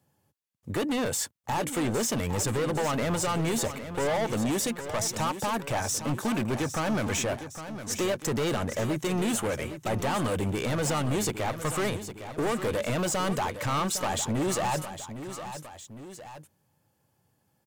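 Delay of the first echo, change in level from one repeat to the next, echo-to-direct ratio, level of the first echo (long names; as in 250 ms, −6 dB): 809 ms, −5.0 dB, −10.0 dB, −11.0 dB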